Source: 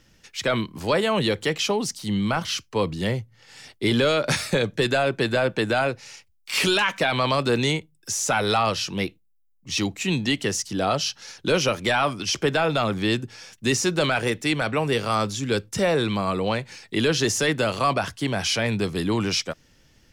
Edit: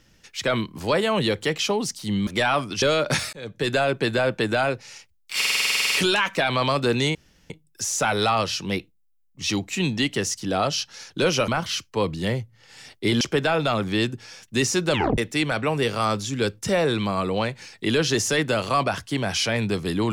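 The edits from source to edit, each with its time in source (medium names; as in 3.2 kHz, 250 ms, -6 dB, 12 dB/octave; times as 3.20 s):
2.27–4.00 s: swap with 11.76–12.31 s
4.51–4.93 s: fade in
6.55 s: stutter 0.05 s, 12 plays
7.78 s: insert room tone 0.35 s
14.03 s: tape stop 0.25 s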